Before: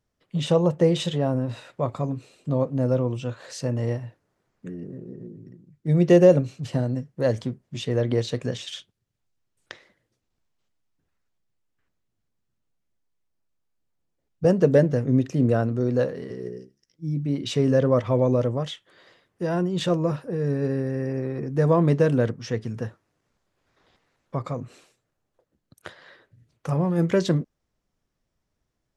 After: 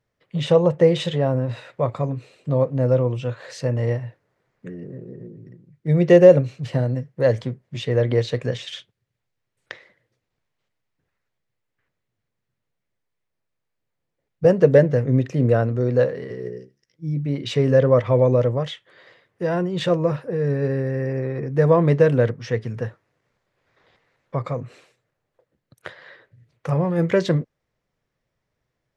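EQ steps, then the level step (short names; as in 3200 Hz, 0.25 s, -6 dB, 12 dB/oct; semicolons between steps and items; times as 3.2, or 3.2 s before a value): graphic EQ 125/500/1000/2000/4000 Hz +9/+9/+4/+10/+4 dB; -5.0 dB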